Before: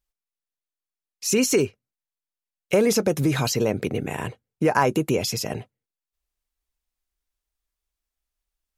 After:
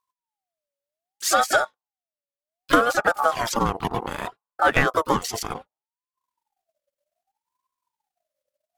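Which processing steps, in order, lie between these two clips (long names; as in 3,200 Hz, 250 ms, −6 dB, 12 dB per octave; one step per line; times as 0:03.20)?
transient designer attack +5 dB, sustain −11 dB
pitch-shifted copies added −12 semitones −12 dB, +7 semitones −11 dB
ring modulator whose carrier an LFO sweeps 800 Hz, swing 30%, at 0.65 Hz
level +1 dB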